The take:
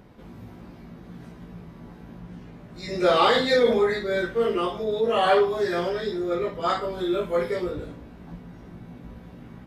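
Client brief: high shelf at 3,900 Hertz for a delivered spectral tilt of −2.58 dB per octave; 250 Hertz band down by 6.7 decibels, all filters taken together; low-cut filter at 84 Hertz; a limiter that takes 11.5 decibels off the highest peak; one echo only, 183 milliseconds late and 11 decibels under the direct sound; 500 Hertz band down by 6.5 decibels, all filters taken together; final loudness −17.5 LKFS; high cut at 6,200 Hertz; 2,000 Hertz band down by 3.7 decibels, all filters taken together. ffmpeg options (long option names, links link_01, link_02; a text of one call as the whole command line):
ffmpeg -i in.wav -af "highpass=84,lowpass=6200,equalizer=frequency=250:width_type=o:gain=-7.5,equalizer=frequency=500:width_type=o:gain=-5.5,equalizer=frequency=2000:width_type=o:gain=-6,highshelf=frequency=3900:gain=8,alimiter=limit=-22dB:level=0:latency=1,aecho=1:1:183:0.282,volume=14dB" out.wav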